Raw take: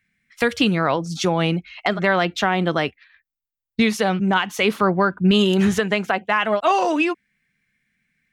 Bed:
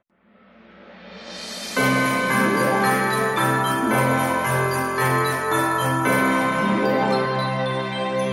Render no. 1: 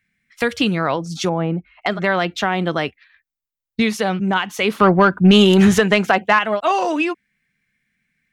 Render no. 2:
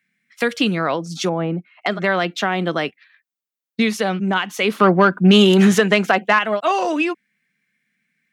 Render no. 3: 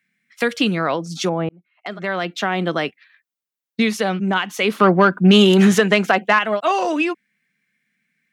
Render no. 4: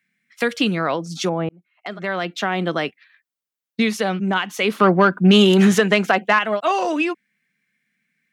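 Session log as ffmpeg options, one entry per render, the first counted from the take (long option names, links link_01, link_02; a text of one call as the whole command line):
ffmpeg -i in.wav -filter_complex "[0:a]asettb=1/sr,asplit=3[link_01][link_02][link_03];[link_01]atrim=end=1.294[link_04];[link_02]atrim=start=1.29:end=1.82,asetpts=PTS-STARTPTS,afade=type=in:duration=0.004:curve=qsin,afade=type=out:start_time=0.526:duration=0.004:curve=qsin,lowpass=1200[link_05];[link_03]atrim=start=1.816[link_06];[link_04][link_05]acrossfade=duration=0.004:curve1=hsin:curve2=qsin[link_07];[link_07][link_06]acrossfade=duration=0.004:curve1=qsin:curve2=hsin,asettb=1/sr,asplit=3[link_08][link_09][link_10];[link_08]atrim=end=4.804[link_11];[link_09]atrim=start=4.8:end=6.39,asetpts=PTS-STARTPTS,afade=type=in:duration=0.004:curve=qsin,afade=type=out:start_time=1.586:duration=0.004:curve=qsin,acontrast=69[link_12];[link_10]atrim=start=6.386[link_13];[link_11][link_12]acrossfade=duration=0.004:curve1=hsin:curve2=qsin[link_14];[link_14][link_13]acrossfade=duration=0.004:curve1=qsin:curve2=hsin" out.wav
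ffmpeg -i in.wav -af "highpass=frequency=160:width=0.5412,highpass=frequency=160:width=1.3066,equalizer=frequency=890:width_type=o:width=0.37:gain=-3" out.wav
ffmpeg -i in.wav -filter_complex "[0:a]asplit=2[link_01][link_02];[link_01]atrim=end=1.49,asetpts=PTS-STARTPTS,afade=type=out:start_time=1.486:duration=0.004:curve=hsin[link_03];[link_02]atrim=start=1.49,asetpts=PTS-STARTPTS,afade=type=in:duration=1.09[link_04];[link_03][link_04]concat=n=2:v=0:a=1" out.wav
ffmpeg -i in.wav -af "volume=-1dB" out.wav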